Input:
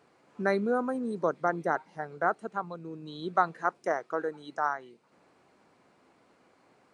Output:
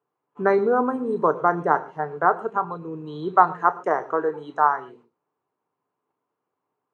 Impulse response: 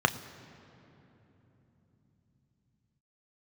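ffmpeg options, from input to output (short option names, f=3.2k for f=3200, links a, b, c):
-filter_complex "[0:a]equalizer=f=100:t=o:w=0.67:g=4,equalizer=f=400:t=o:w=0.67:g=10,equalizer=f=1k:t=o:w=0.67:g=9,agate=range=-26dB:threshold=-52dB:ratio=16:detection=peak[a];[1:a]atrim=start_sample=2205,atrim=end_sample=6615[b];[a][b]afir=irnorm=-1:irlink=0,volume=-10.5dB"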